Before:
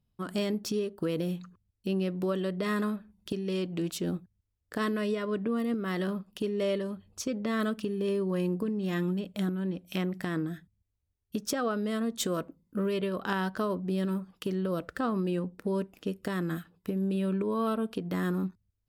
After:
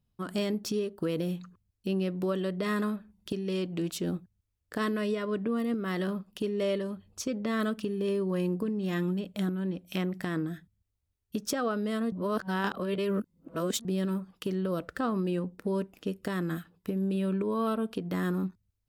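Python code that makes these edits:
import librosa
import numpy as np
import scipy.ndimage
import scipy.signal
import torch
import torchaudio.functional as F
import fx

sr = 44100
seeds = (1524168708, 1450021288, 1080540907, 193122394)

y = fx.edit(x, sr, fx.reverse_span(start_s=12.12, length_s=1.73), tone=tone)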